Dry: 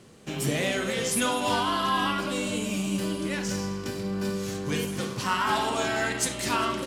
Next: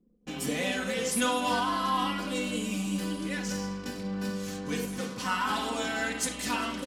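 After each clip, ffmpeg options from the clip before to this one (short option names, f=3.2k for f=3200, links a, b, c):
-af "anlmdn=0.1,aecho=1:1:4:0.71,volume=-5dB"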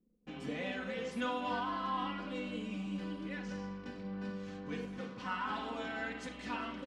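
-af "lowpass=2.9k,volume=-8dB"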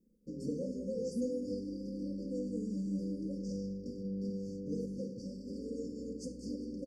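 -af "afftfilt=real='re*(1-between(b*sr/4096,580,4500))':imag='im*(1-between(b*sr/4096,580,4500))':win_size=4096:overlap=0.75,volume=3.5dB"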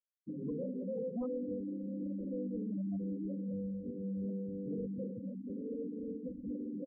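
-af "asoftclip=type=tanh:threshold=-36dB,afftfilt=real='re*gte(hypot(re,im),0.0178)':imag='im*gte(hypot(re,im),0.0178)':win_size=1024:overlap=0.75,volume=3dB"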